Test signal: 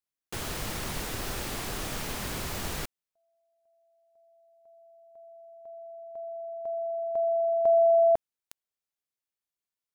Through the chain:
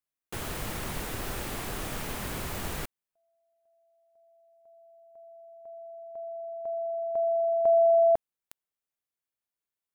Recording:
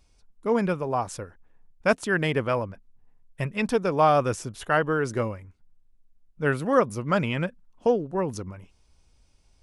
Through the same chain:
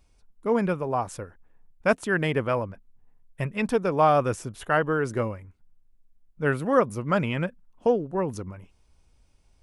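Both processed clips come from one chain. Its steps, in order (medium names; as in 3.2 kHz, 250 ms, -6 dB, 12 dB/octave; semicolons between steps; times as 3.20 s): peaking EQ 5.1 kHz -5 dB 1.3 oct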